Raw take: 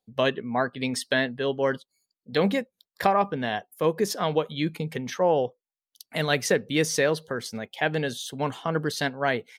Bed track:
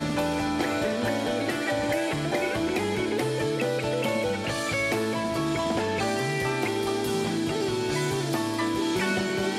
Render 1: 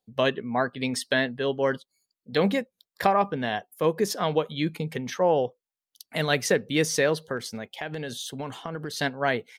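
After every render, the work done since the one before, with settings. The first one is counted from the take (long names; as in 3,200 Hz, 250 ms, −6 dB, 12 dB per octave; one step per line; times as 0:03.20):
0:07.37–0:08.99: downward compressor, threshold −29 dBFS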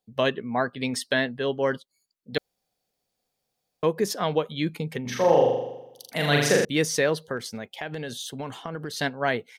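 0:02.38–0:03.83: fill with room tone
0:05.01–0:06.65: flutter between parallel walls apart 7 metres, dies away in 0.91 s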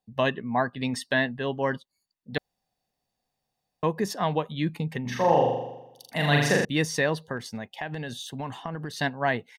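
high-shelf EQ 3,600 Hz −7 dB
comb filter 1.1 ms, depth 43%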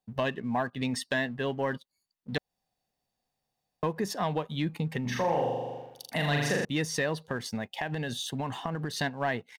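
downward compressor 2 to 1, threshold −35 dBFS, peak gain reduction 10.5 dB
leveller curve on the samples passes 1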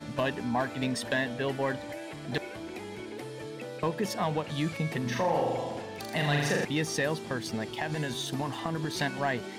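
mix in bed track −13.5 dB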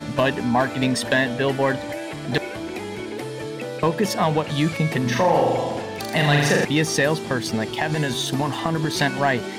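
level +9.5 dB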